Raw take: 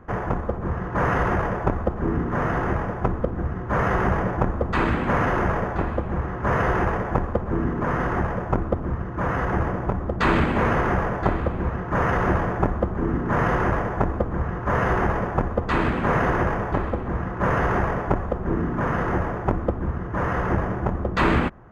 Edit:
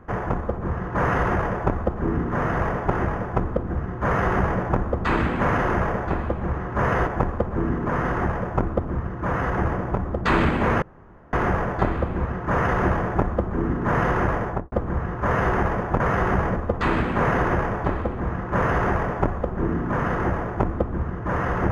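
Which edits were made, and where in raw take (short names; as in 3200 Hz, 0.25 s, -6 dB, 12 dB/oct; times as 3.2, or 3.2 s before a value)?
3.73–4.29 copy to 15.44
6.75–7.02 cut
10.77 insert room tone 0.51 s
13.9–14.16 studio fade out
17.81–18.13 copy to 2.59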